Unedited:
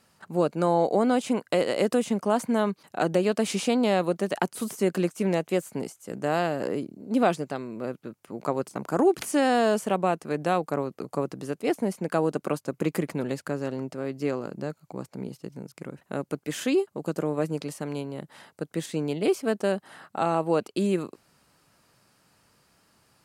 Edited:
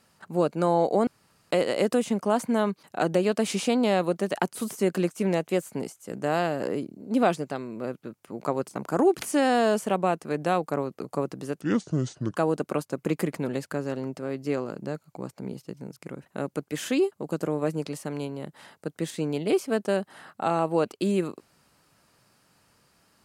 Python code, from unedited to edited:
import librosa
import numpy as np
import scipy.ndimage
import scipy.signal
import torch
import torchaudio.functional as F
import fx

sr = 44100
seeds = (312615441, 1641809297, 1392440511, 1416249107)

y = fx.edit(x, sr, fx.room_tone_fill(start_s=1.07, length_s=0.44),
    fx.speed_span(start_s=11.61, length_s=0.5, speed=0.67), tone=tone)